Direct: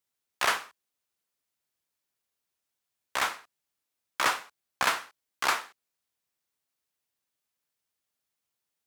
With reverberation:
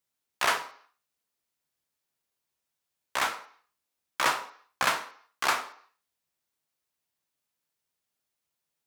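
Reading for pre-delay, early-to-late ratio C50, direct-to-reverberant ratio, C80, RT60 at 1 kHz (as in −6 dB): 11 ms, 14.0 dB, 8.0 dB, 17.0 dB, 0.55 s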